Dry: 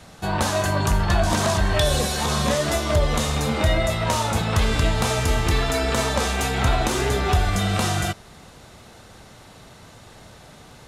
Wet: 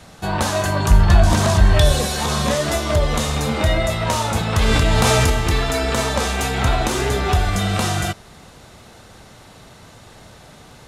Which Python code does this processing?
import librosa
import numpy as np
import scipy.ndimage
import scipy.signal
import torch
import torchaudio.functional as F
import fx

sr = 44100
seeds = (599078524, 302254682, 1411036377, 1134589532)

y = fx.low_shelf(x, sr, hz=140.0, db=9.0, at=(0.89, 1.92))
y = fx.env_flatten(y, sr, amount_pct=100, at=(4.6, 5.3))
y = y * librosa.db_to_amplitude(2.0)